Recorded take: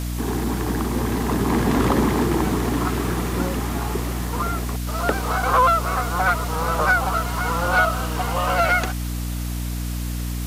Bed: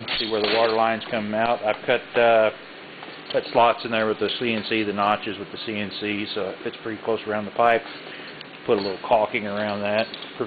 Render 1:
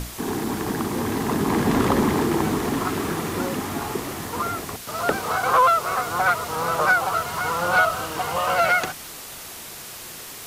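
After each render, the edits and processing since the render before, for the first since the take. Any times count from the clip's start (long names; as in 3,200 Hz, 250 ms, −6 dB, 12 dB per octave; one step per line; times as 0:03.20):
mains-hum notches 60/120/180/240/300 Hz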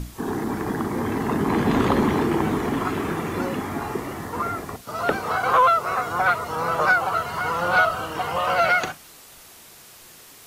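noise reduction from a noise print 9 dB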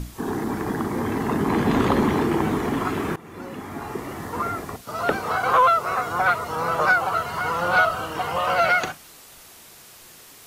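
0:03.16–0:04.31: fade in, from −19.5 dB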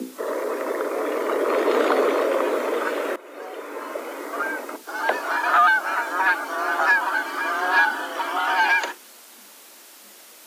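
frequency shifter +200 Hz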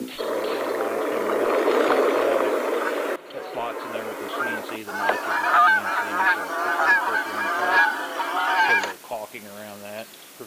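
mix in bed −13 dB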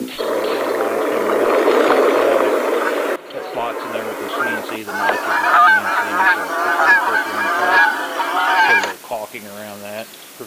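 level +6.5 dB
brickwall limiter −3 dBFS, peak gain reduction 3 dB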